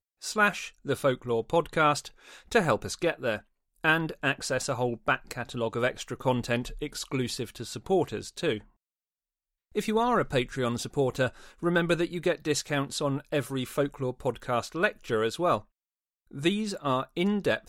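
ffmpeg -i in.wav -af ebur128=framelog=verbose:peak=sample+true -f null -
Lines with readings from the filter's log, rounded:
Integrated loudness:
  I:         -28.9 LUFS
  Threshold: -39.1 LUFS
Loudness range:
  LRA:         3.1 LU
  Threshold: -49.5 LUFS
  LRA low:   -31.0 LUFS
  LRA high:  -27.9 LUFS
Sample peak:
  Peak:       -9.8 dBFS
True peak:
  Peak:       -9.8 dBFS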